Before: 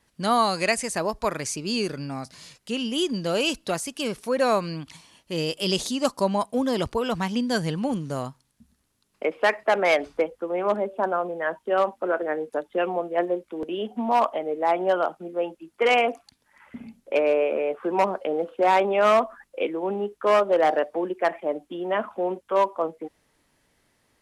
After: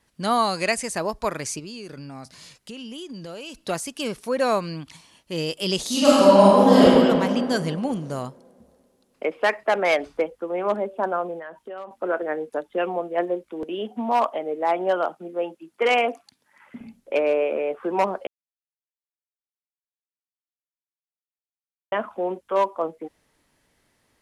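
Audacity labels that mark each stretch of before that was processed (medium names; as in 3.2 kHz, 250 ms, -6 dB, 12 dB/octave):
1.590000	3.590000	compression, threshold -34 dBFS
5.860000	6.830000	reverb throw, RT60 2.4 s, DRR -10.5 dB
11.390000	11.910000	compression 4:1, threshold -35 dBFS
13.640000	16.810000	high-pass 130 Hz
18.270000	21.920000	mute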